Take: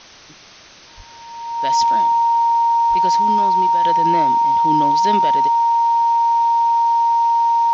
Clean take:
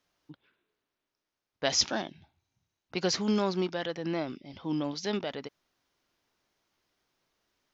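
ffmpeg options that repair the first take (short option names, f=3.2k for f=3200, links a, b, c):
-filter_complex "[0:a]bandreject=f=930:w=30,asplit=3[a][b][c];[a]afade=t=out:st=0.96:d=0.02[d];[b]highpass=f=140:w=0.5412,highpass=f=140:w=1.3066,afade=t=in:st=0.96:d=0.02,afade=t=out:st=1.08:d=0.02[e];[c]afade=t=in:st=1.08:d=0.02[f];[d][e][f]amix=inputs=3:normalize=0,asplit=3[g][h][i];[g]afade=t=out:st=2.89:d=0.02[j];[h]highpass=f=140:w=0.5412,highpass=f=140:w=1.3066,afade=t=in:st=2.89:d=0.02,afade=t=out:st=3.01:d=0.02[k];[i]afade=t=in:st=3.01:d=0.02[l];[j][k][l]amix=inputs=3:normalize=0,afwtdn=0.011,asetnsamples=n=441:p=0,asendcmd='3.84 volume volume -8.5dB',volume=0dB"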